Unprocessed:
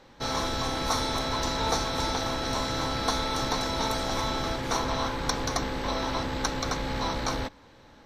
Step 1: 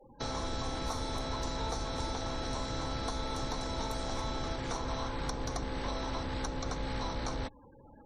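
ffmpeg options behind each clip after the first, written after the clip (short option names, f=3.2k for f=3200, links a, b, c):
-filter_complex "[0:a]afftfilt=real='re*gte(hypot(re,im),0.00501)':imag='im*gte(hypot(re,im),0.00501)':win_size=1024:overlap=0.75,equalizer=f=8.4k:t=o:w=0.97:g=4.5,acrossover=split=88|960[a][b][c];[a]acompressor=threshold=-35dB:ratio=4[d];[b]acompressor=threshold=-38dB:ratio=4[e];[c]acompressor=threshold=-43dB:ratio=4[f];[d][e][f]amix=inputs=3:normalize=0"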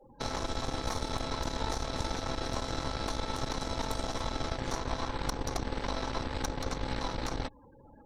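-af "aeval=exprs='0.0944*(cos(1*acos(clip(val(0)/0.0944,-1,1)))-cos(1*PI/2))+0.0266*(cos(4*acos(clip(val(0)/0.0944,-1,1)))-cos(4*PI/2))':c=same"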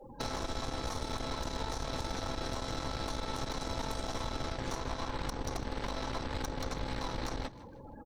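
-filter_complex "[0:a]acompressor=threshold=-37dB:ratio=10,asoftclip=type=hard:threshold=-33.5dB,asplit=4[a][b][c][d];[b]adelay=156,afreqshift=78,volume=-17.5dB[e];[c]adelay=312,afreqshift=156,volume=-26.9dB[f];[d]adelay=468,afreqshift=234,volume=-36.2dB[g];[a][e][f][g]amix=inputs=4:normalize=0,volume=6.5dB"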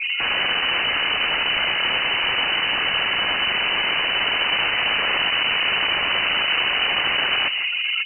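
-af "aeval=exprs='0.0531*sin(PI/2*5.62*val(0)/0.0531)':c=same,lowpass=f=2.6k:t=q:w=0.5098,lowpass=f=2.6k:t=q:w=0.6013,lowpass=f=2.6k:t=q:w=0.9,lowpass=f=2.6k:t=q:w=2.563,afreqshift=-3000,volume=8dB"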